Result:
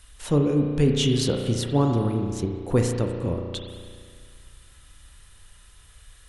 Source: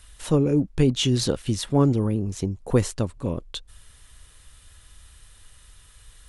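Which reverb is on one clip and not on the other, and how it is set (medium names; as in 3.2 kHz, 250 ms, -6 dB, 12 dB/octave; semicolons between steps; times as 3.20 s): spring tank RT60 2 s, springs 34 ms, chirp 65 ms, DRR 2.5 dB; trim -1.5 dB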